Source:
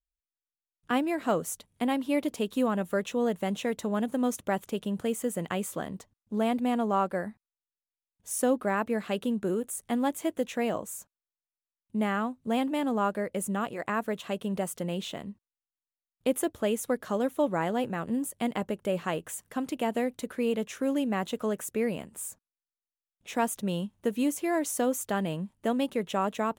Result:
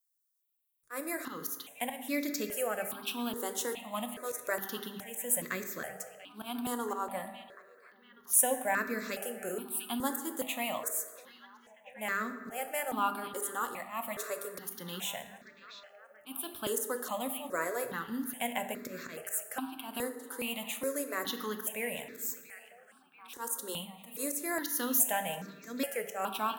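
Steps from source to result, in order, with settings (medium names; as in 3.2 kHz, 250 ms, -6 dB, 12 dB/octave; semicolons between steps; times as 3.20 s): RIAA curve recording; hum notches 50/100/150/200/250/300/350/400/450/500 Hz; slow attack 149 ms; repeats whose band climbs or falls 687 ms, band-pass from 3.3 kHz, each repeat -0.7 oct, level -11 dB; on a send at -7 dB: reverberation RT60 1.5 s, pre-delay 4 ms; on the sum: stepped phaser 2.4 Hz 660–3000 Hz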